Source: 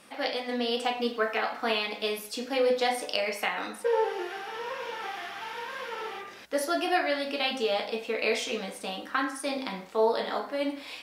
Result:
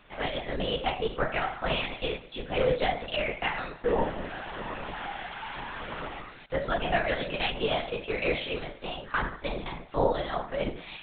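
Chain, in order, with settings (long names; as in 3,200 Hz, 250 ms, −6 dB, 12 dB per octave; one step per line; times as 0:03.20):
linear-prediction vocoder at 8 kHz whisper
parametric band 83 Hz −11.5 dB 0.71 octaves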